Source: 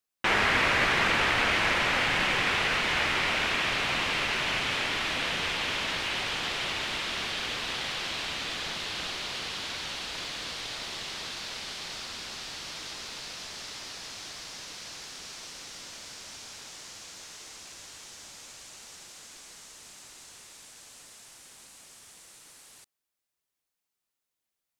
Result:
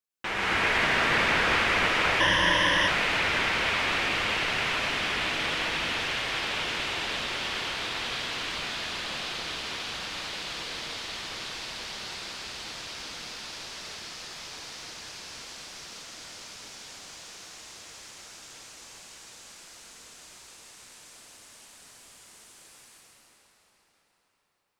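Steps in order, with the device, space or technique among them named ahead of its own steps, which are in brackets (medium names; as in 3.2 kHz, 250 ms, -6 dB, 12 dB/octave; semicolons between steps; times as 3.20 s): cathedral (reverberation RT60 5.4 s, pre-delay 99 ms, DRR -7.5 dB); 2.20–2.88 s: rippled EQ curve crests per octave 1.2, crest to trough 15 dB; trim -7 dB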